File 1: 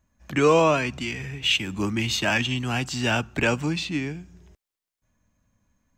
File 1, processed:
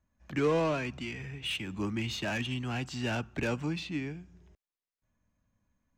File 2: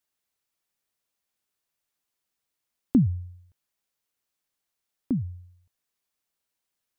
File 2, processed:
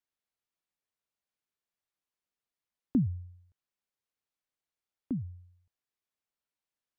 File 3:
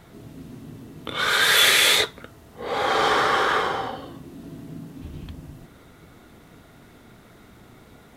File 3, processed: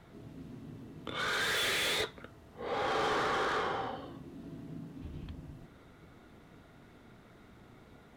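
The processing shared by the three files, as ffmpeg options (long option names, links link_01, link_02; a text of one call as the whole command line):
ffmpeg -i in.wav -filter_complex "[0:a]highshelf=frequency=6400:gain=-11,acrossover=split=450[link_01][link_02];[link_02]asoftclip=type=tanh:threshold=-22.5dB[link_03];[link_01][link_03]amix=inputs=2:normalize=0,volume=-7dB" out.wav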